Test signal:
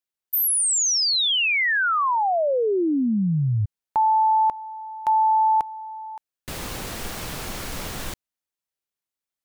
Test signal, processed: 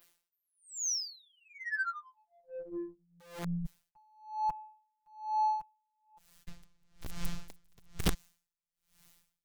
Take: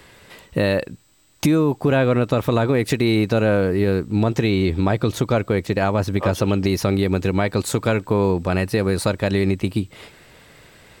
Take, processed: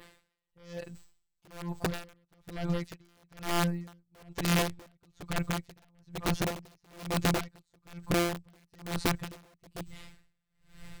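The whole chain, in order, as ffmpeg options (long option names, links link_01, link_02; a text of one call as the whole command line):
ffmpeg -i in.wav -filter_complex "[0:a]acrossover=split=670|6700[link_01][link_02][link_03];[link_03]acompressor=threshold=-49dB:ratio=8:attack=2.4:release=161:knee=1:detection=peak[link_04];[link_01][link_02][link_04]amix=inputs=3:normalize=0,adynamicequalizer=threshold=0.00355:dfrequency=6600:dqfactor=1.6:tfrequency=6600:tqfactor=1.6:attack=5:release=100:ratio=0.375:range=2:mode=boostabove:tftype=bell,areverse,acompressor=mode=upward:threshold=-32dB:ratio=4:attack=0.25:release=31:knee=2.83:detection=peak,areverse,afftfilt=real='hypot(re,im)*cos(PI*b)':imag='0':win_size=1024:overlap=0.75,aeval=exprs='0.188*(abs(mod(val(0)/0.188+3,4)-2)-1)':channel_layout=same,aeval=exprs='0.188*(cos(1*acos(clip(val(0)/0.188,-1,1)))-cos(1*PI/2))+0.00422*(cos(7*acos(clip(val(0)/0.188,-1,1)))-cos(7*PI/2))':channel_layout=same,asubboost=boost=10.5:cutoff=120,aeval=exprs='(mod(4.47*val(0)+1,2)-1)/4.47':channel_layout=same,aeval=exprs='val(0)*pow(10,-38*(0.5-0.5*cos(2*PI*1.1*n/s))/20)':channel_layout=same,volume=-7dB" out.wav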